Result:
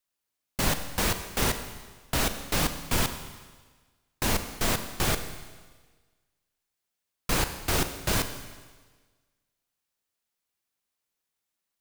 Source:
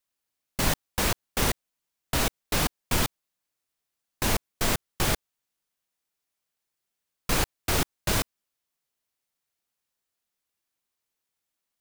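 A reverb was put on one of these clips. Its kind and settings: Schroeder reverb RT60 1.4 s, combs from 32 ms, DRR 8.5 dB; trim -1 dB

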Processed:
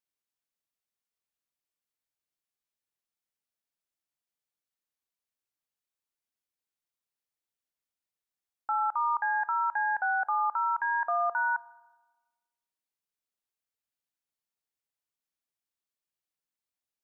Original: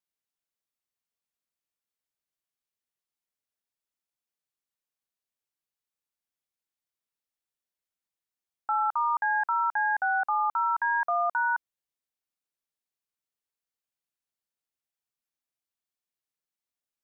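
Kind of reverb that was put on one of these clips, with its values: FDN reverb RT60 1.2 s, low-frequency decay 1.4×, high-frequency decay 0.8×, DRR 17 dB; trim -2 dB

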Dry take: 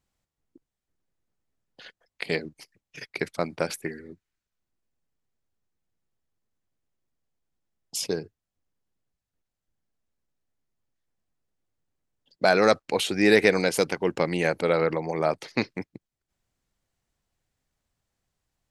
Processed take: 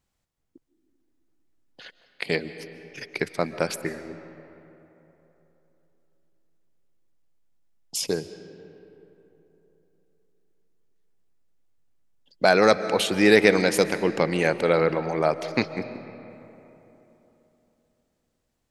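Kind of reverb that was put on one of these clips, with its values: algorithmic reverb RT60 3.5 s, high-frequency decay 0.5×, pre-delay 100 ms, DRR 12.5 dB; trim +2 dB

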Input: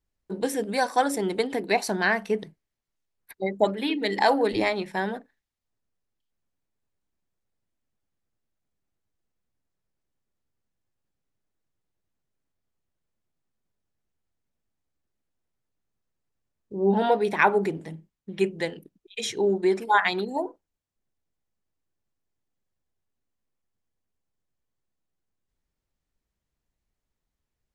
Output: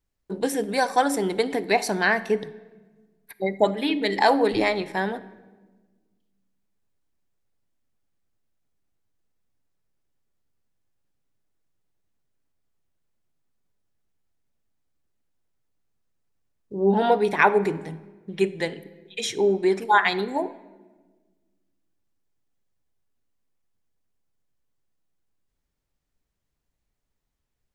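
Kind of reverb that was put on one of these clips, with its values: simulated room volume 1100 m³, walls mixed, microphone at 0.3 m; trim +2 dB

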